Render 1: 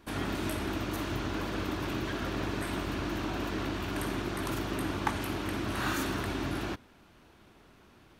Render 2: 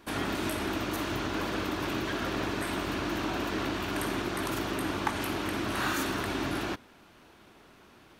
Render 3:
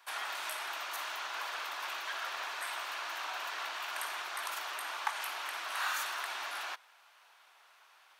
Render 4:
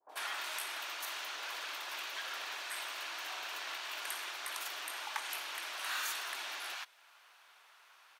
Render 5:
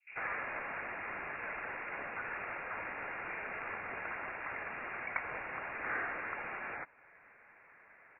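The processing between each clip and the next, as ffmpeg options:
ffmpeg -i in.wav -filter_complex "[0:a]lowshelf=frequency=160:gain=-8.5,asplit=2[link_01][link_02];[link_02]alimiter=level_in=2dB:limit=-24dB:level=0:latency=1:release=131,volume=-2dB,volume=-1dB[link_03];[link_01][link_03]amix=inputs=2:normalize=0,volume=-1.5dB" out.wav
ffmpeg -i in.wav -af "highpass=frequency=780:width=0.5412,highpass=frequency=780:width=1.3066,volume=-2.5dB" out.wav
ffmpeg -i in.wav -filter_complex "[0:a]adynamicequalizer=threshold=0.00224:dfrequency=1200:dqfactor=1:tfrequency=1200:tqfactor=1:attack=5:release=100:ratio=0.375:range=3:mode=cutabove:tftype=bell,acrossover=split=760[link_01][link_02];[link_02]adelay=90[link_03];[link_01][link_03]amix=inputs=2:normalize=0,volume=1dB" out.wav
ffmpeg -i in.wav -af "lowpass=frequency=2600:width_type=q:width=0.5098,lowpass=frequency=2600:width_type=q:width=0.6013,lowpass=frequency=2600:width_type=q:width=0.9,lowpass=frequency=2600:width_type=q:width=2.563,afreqshift=-3100,volume=3dB" out.wav

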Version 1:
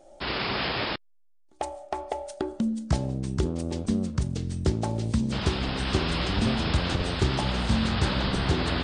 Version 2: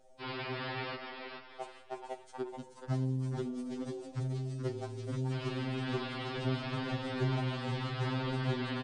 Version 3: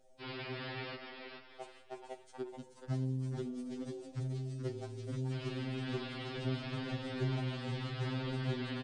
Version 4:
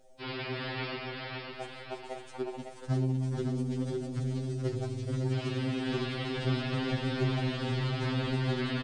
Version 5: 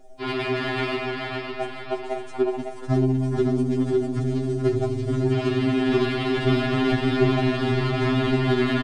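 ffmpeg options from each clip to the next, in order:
ffmpeg -i in.wav -filter_complex "[0:a]acrossover=split=3300[link_01][link_02];[link_02]acompressor=threshold=-47dB:ratio=4:attack=1:release=60[link_03];[link_01][link_03]amix=inputs=2:normalize=0,asplit=5[link_04][link_05][link_06][link_07][link_08];[link_05]adelay=430,afreqshift=110,volume=-6.5dB[link_09];[link_06]adelay=860,afreqshift=220,volume=-15.9dB[link_10];[link_07]adelay=1290,afreqshift=330,volume=-25.2dB[link_11];[link_08]adelay=1720,afreqshift=440,volume=-34.6dB[link_12];[link_04][link_09][link_10][link_11][link_12]amix=inputs=5:normalize=0,afftfilt=real='re*2.45*eq(mod(b,6),0)':imag='im*2.45*eq(mod(b,6),0)':win_size=2048:overlap=0.75,volume=-7dB" out.wav
ffmpeg -i in.wav -af "equalizer=frequency=1000:width=1.3:gain=-5.5,volume=-2.5dB" out.wav
ffmpeg -i in.wav -af "aecho=1:1:555|1110|1665|2220|2775:0.562|0.219|0.0855|0.0334|0.013,volume=6dB" out.wav
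ffmpeg -i in.wav -filter_complex "[0:a]aecho=1:1:2.9:0.85,asplit=2[link_01][link_02];[link_02]adynamicsmooth=sensitivity=5:basefreq=2300,volume=1dB[link_03];[link_01][link_03]amix=inputs=2:normalize=0,volume=2.5dB" out.wav

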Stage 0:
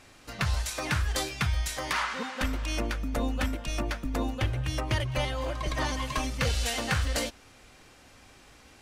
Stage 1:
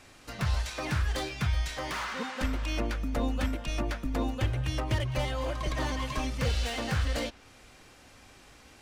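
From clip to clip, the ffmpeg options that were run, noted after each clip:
ffmpeg -i in.wav -filter_complex "[0:a]acrossover=split=590|5100[link_01][link_02][link_03];[link_02]asoftclip=type=hard:threshold=-33.5dB[link_04];[link_03]acompressor=threshold=-51dB:ratio=6[link_05];[link_01][link_04][link_05]amix=inputs=3:normalize=0" out.wav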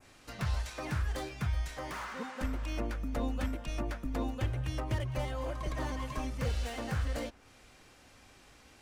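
ffmpeg -i in.wav -af "adynamicequalizer=threshold=0.00282:dfrequency=3700:dqfactor=0.74:tfrequency=3700:tqfactor=0.74:attack=5:release=100:ratio=0.375:range=3.5:mode=cutabove:tftype=bell,volume=-4dB" out.wav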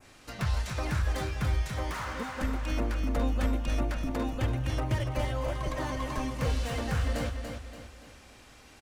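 ffmpeg -i in.wav -af "aecho=1:1:287|574|861|1148|1435:0.473|0.194|0.0795|0.0326|0.0134,volume=3.5dB" out.wav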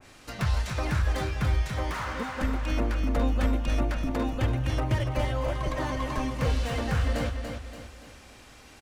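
ffmpeg -i in.wav -af "adynamicequalizer=threshold=0.00224:dfrequency=5200:dqfactor=0.7:tfrequency=5200:tqfactor=0.7:attack=5:release=100:ratio=0.375:range=2:mode=cutabove:tftype=highshelf,volume=3dB" out.wav

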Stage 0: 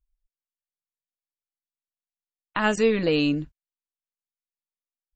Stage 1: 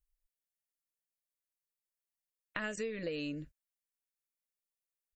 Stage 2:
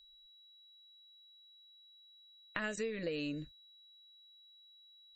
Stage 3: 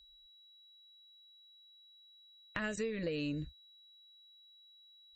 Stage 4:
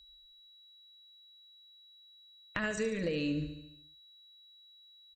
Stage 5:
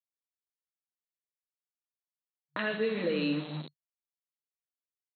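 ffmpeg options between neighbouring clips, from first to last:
ffmpeg -i in.wav -af "firequalizer=gain_entry='entry(380,0);entry(560,7);entry(810,-9);entry(1800,6);entry(3300,0);entry(6000,5);entry(9600,10)':delay=0.05:min_phase=1,acompressor=threshold=-28dB:ratio=10,volume=-7dB" out.wav
ffmpeg -i in.wav -af "aeval=exprs='val(0)+0.00112*sin(2*PI*3900*n/s)':channel_layout=same" out.wav
ffmpeg -i in.wav -af "equalizer=frequency=67:width_type=o:width=1.9:gain=14,asoftclip=type=tanh:threshold=-21dB" out.wav
ffmpeg -i in.wav -af "aecho=1:1:72|144|216|288|360|432|504:0.316|0.183|0.106|0.0617|0.0358|0.0208|0.012,volume=3dB" out.wav
ffmpeg -i in.wav -filter_complex "[0:a]acrossover=split=190|1600[link_01][link_02][link_03];[link_03]adelay=30[link_04];[link_01]adelay=170[link_05];[link_05][link_02][link_04]amix=inputs=3:normalize=0,aeval=exprs='val(0)*gte(abs(val(0)),0.00891)':channel_layout=same,afftfilt=real='re*between(b*sr/4096,140,4300)':imag='im*between(b*sr/4096,140,4300)':win_size=4096:overlap=0.75,volume=4.5dB" out.wav

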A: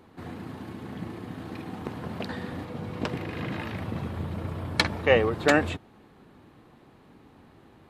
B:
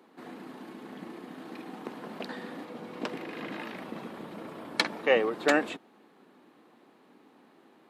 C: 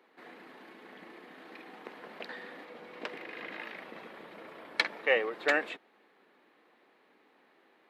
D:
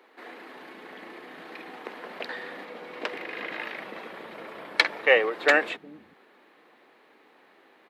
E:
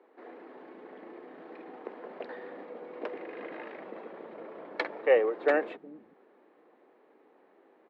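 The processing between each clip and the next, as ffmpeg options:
ffmpeg -i in.wav -af "highpass=frequency=220:width=0.5412,highpass=frequency=220:width=1.3066,volume=-3dB" out.wav
ffmpeg -i in.wav -af "equalizer=frequency=125:width_type=o:width=1:gain=-8,equalizer=frequency=250:width_type=o:width=1:gain=-5,equalizer=frequency=500:width_type=o:width=1:gain=4,equalizer=frequency=2000:width_type=o:width=1:gain=9,equalizer=frequency=4000:width_type=o:width=1:gain=3,equalizer=frequency=8000:width_type=o:width=1:gain=-4,volume=-7.5dB" out.wav
ffmpeg -i in.wav -filter_complex "[0:a]acrossover=split=210[link_01][link_02];[link_01]adelay=370[link_03];[link_03][link_02]amix=inputs=2:normalize=0,volume=7.5dB" out.wav
ffmpeg -i in.wav -af "bandpass=frequency=410:width_type=q:width=0.93:csg=0" out.wav

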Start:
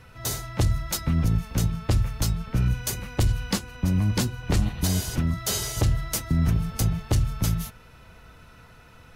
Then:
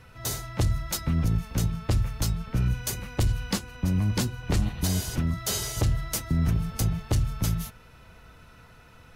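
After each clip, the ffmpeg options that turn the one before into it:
ffmpeg -i in.wav -af "acontrast=75,volume=-8.5dB" out.wav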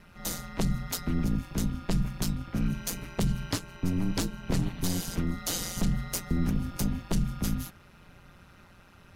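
ffmpeg -i in.wav -af "aeval=exprs='val(0)*sin(2*PI*89*n/s)':channel_layout=same" out.wav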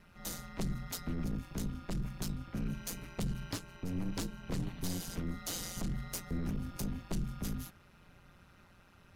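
ffmpeg -i in.wav -af "aeval=exprs='(tanh(12.6*val(0)+0.2)-tanh(0.2))/12.6':channel_layout=same,volume=-6dB" out.wav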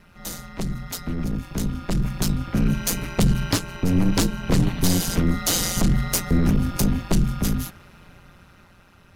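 ffmpeg -i in.wav -af "dynaudnorm=framelen=360:gausssize=11:maxgain=9.5dB,volume=8dB" out.wav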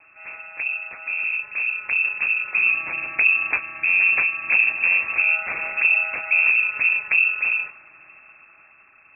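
ffmpeg -i in.wav -af "lowpass=frequency=2300:width_type=q:width=0.5098,lowpass=frequency=2300:width_type=q:width=0.6013,lowpass=frequency=2300:width_type=q:width=0.9,lowpass=frequency=2300:width_type=q:width=2.563,afreqshift=-2700" out.wav

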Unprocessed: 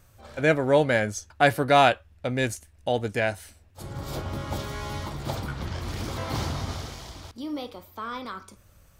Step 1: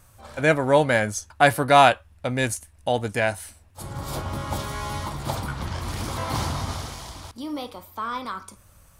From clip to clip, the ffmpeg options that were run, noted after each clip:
ffmpeg -i in.wav -af "equalizer=frequency=400:width_type=o:width=0.67:gain=-3,equalizer=frequency=1000:width_type=o:width=0.67:gain=5,equalizer=frequency=10000:width_type=o:width=0.67:gain=8,volume=2dB" out.wav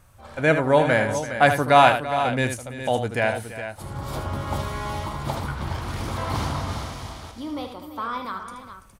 ffmpeg -i in.wav -af "bass=frequency=250:gain=0,treble=frequency=4000:gain=-6,aecho=1:1:77|335|414:0.376|0.178|0.299" out.wav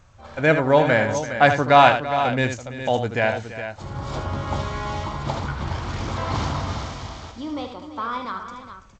ffmpeg -i in.wav -af "volume=1.5dB" -ar 16000 -c:a g722 out.g722

